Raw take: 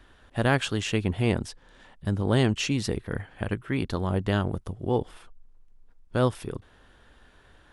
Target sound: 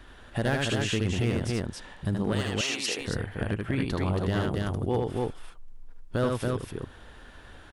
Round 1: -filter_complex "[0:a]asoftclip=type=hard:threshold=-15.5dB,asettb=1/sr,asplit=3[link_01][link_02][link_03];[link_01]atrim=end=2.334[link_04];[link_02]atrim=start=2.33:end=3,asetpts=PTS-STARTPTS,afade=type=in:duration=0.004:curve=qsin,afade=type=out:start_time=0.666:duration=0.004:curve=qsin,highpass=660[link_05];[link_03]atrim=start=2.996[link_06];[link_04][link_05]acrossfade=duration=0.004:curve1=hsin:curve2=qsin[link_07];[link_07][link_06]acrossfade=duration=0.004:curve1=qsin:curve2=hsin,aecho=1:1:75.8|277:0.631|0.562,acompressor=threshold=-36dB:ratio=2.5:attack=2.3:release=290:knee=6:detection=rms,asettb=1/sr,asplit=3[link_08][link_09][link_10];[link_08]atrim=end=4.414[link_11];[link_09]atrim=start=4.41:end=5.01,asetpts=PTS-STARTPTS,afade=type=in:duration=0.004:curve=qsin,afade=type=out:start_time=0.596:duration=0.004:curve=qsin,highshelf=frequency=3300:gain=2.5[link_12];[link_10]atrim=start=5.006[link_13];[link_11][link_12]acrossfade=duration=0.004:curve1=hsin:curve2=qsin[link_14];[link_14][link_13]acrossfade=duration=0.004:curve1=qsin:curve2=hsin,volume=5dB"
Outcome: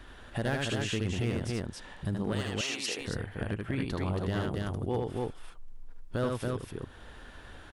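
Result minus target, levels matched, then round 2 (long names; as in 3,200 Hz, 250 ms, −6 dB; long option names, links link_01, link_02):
downward compressor: peak gain reduction +4 dB
-filter_complex "[0:a]asoftclip=type=hard:threshold=-15.5dB,asettb=1/sr,asplit=3[link_01][link_02][link_03];[link_01]atrim=end=2.334[link_04];[link_02]atrim=start=2.33:end=3,asetpts=PTS-STARTPTS,afade=type=in:duration=0.004:curve=qsin,afade=type=out:start_time=0.666:duration=0.004:curve=qsin,highpass=660[link_05];[link_03]atrim=start=2.996[link_06];[link_04][link_05]acrossfade=duration=0.004:curve1=hsin:curve2=qsin[link_07];[link_07][link_06]acrossfade=duration=0.004:curve1=qsin:curve2=hsin,aecho=1:1:75.8|277:0.631|0.562,acompressor=threshold=-29dB:ratio=2.5:attack=2.3:release=290:knee=6:detection=rms,asettb=1/sr,asplit=3[link_08][link_09][link_10];[link_08]atrim=end=4.414[link_11];[link_09]atrim=start=4.41:end=5.01,asetpts=PTS-STARTPTS,afade=type=in:duration=0.004:curve=qsin,afade=type=out:start_time=0.596:duration=0.004:curve=qsin,highshelf=frequency=3300:gain=2.5[link_12];[link_10]atrim=start=5.006[link_13];[link_11][link_12]acrossfade=duration=0.004:curve1=hsin:curve2=qsin[link_14];[link_14][link_13]acrossfade=duration=0.004:curve1=qsin:curve2=hsin,volume=5dB"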